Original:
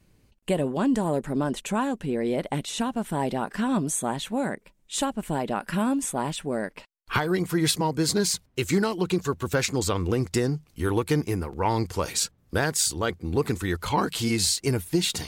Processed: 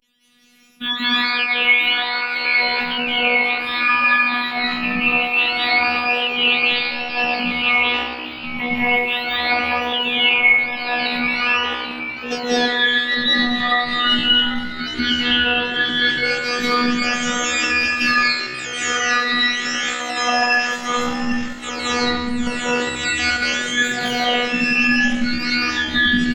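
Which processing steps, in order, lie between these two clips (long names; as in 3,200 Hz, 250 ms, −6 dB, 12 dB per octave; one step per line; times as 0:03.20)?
frequency axis turned over on the octave scale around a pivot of 780 Hz
parametric band 2,900 Hz +12 dB 1.4 octaves
notch filter 970 Hz, Q 26
dense smooth reverb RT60 0.71 s, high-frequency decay 0.55×, pre-delay 95 ms, DRR −8.5 dB
pitch vibrato 0.32 Hz 66 cents
phases set to zero 243 Hz
on a send: echo with shifted repeats 455 ms, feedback 51%, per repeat +67 Hz, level −13.5 dB
on the sum: tempo change 0.58×
automatic gain control gain up to 7.5 dB
low-shelf EQ 130 Hz −8.5 dB
level −1 dB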